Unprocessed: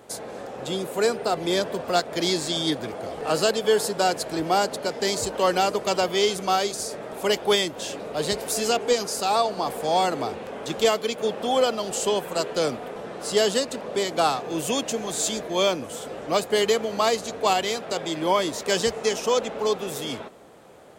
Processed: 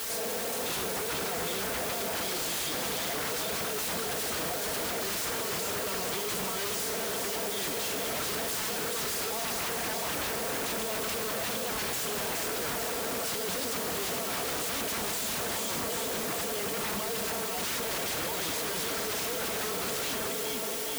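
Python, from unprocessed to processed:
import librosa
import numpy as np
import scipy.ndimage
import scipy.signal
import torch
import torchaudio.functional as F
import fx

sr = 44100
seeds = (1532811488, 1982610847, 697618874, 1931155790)

p1 = fx.low_shelf(x, sr, hz=200.0, db=-8.0)
p2 = fx.over_compress(p1, sr, threshold_db=-27.0, ratio=-0.5)
p3 = fx.high_shelf(p2, sr, hz=5900.0, db=-7.0)
p4 = fx.notch(p3, sr, hz=760.0, q=14.0)
p5 = p4 + fx.echo_feedback(p4, sr, ms=424, feedback_pct=55, wet_db=-7, dry=0)
p6 = fx.rev_schroeder(p5, sr, rt60_s=2.2, comb_ms=33, drr_db=11.0)
p7 = fx.quant_dither(p6, sr, seeds[0], bits=6, dither='triangular')
p8 = p7 + 0.69 * np.pad(p7, (int(4.4 * sr / 1000.0), 0))[:len(p7)]
p9 = 10.0 ** (-27.5 / 20.0) * (np.abs((p8 / 10.0 ** (-27.5 / 20.0) + 3.0) % 4.0 - 2.0) - 1.0)
y = scipy.signal.sosfilt(scipy.signal.butter(2, 46.0, 'highpass', fs=sr, output='sos'), p9)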